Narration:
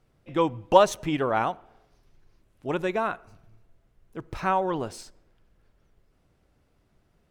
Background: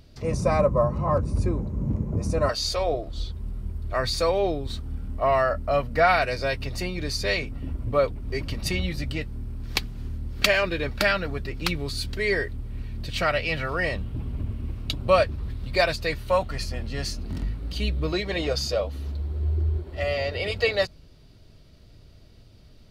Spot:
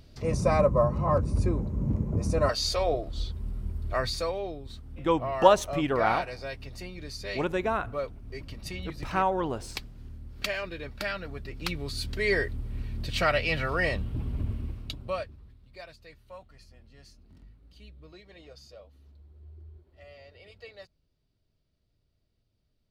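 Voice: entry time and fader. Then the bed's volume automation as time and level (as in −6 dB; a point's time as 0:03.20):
4.70 s, −1.5 dB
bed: 0:03.92 −1.5 dB
0:04.45 −11 dB
0:11.02 −11 dB
0:12.37 −1 dB
0:14.55 −1 dB
0:15.64 −24 dB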